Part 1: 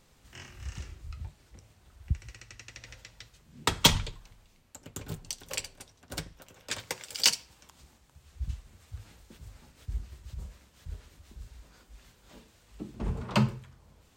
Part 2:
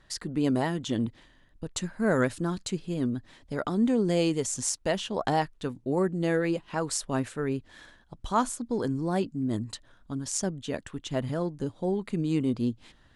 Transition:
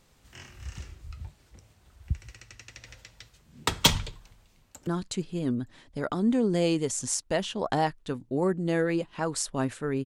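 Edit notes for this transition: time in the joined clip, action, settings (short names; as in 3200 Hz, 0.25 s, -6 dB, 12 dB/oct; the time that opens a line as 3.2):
part 1
4.11–4.87 echo throw 0.46 s, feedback 30%, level -17 dB
4.87 switch to part 2 from 2.42 s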